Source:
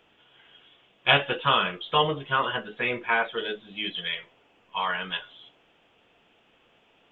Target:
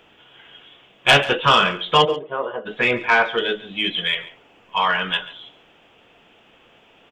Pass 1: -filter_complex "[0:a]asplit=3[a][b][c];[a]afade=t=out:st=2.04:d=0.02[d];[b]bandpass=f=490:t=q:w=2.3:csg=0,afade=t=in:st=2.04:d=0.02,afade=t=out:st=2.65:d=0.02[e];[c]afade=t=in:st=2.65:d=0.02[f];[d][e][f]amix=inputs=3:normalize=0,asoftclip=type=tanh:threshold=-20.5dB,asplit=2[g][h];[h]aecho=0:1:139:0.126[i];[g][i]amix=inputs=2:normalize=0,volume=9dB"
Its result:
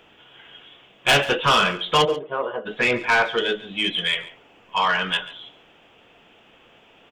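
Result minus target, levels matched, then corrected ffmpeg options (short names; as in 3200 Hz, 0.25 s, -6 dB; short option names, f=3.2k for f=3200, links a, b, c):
soft clip: distortion +6 dB
-filter_complex "[0:a]asplit=3[a][b][c];[a]afade=t=out:st=2.04:d=0.02[d];[b]bandpass=f=490:t=q:w=2.3:csg=0,afade=t=in:st=2.04:d=0.02,afade=t=out:st=2.65:d=0.02[e];[c]afade=t=in:st=2.65:d=0.02[f];[d][e][f]amix=inputs=3:normalize=0,asoftclip=type=tanh:threshold=-13.5dB,asplit=2[g][h];[h]aecho=0:1:139:0.126[i];[g][i]amix=inputs=2:normalize=0,volume=9dB"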